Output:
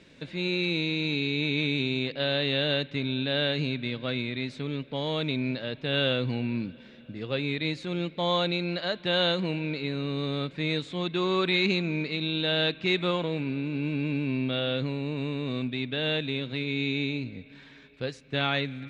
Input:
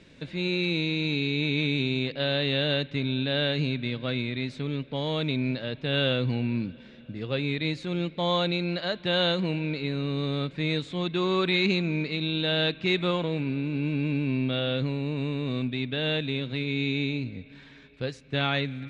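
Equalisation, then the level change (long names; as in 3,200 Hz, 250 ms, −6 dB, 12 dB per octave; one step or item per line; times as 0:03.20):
low-shelf EQ 130 Hz −6.5 dB
0.0 dB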